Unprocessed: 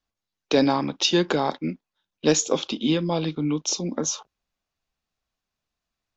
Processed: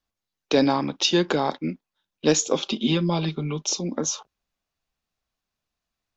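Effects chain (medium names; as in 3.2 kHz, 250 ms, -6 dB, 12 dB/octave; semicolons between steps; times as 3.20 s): 2.61–3.67 s: comb 5.1 ms, depth 70%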